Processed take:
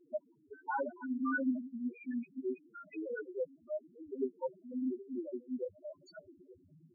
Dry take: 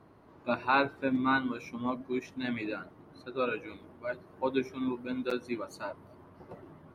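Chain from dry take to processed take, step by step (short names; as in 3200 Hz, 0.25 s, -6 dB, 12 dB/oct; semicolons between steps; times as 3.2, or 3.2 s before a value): slices in reverse order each 0.172 s, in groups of 3; bell 120 Hz -9.5 dB 0.22 oct; loudest bins only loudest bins 2; gain -1 dB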